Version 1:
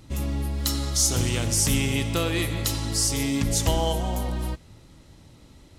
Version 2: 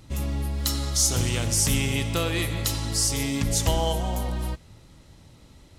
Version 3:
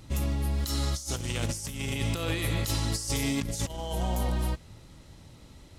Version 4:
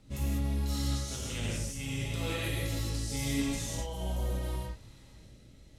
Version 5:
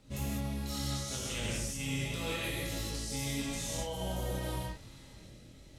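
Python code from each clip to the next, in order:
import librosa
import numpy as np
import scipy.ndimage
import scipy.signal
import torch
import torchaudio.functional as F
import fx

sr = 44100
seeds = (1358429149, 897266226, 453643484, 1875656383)

y1 = fx.peak_eq(x, sr, hz=300.0, db=-3.0, octaves=0.79)
y2 = fx.over_compress(y1, sr, threshold_db=-27.0, ratio=-0.5)
y2 = y2 * 10.0 ** (-2.0 / 20.0)
y3 = fx.rotary_switch(y2, sr, hz=5.0, then_hz=0.75, switch_at_s=1.41)
y3 = fx.rev_gated(y3, sr, seeds[0], gate_ms=220, shape='flat', drr_db=-6.0)
y3 = y3 * 10.0 ** (-8.5 / 20.0)
y4 = fx.low_shelf(y3, sr, hz=110.0, db=-6.5)
y4 = fx.rider(y4, sr, range_db=10, speed_s=0.5)
y4 = fx.doubler(y4, sr, ms=23.0, db=-6.5)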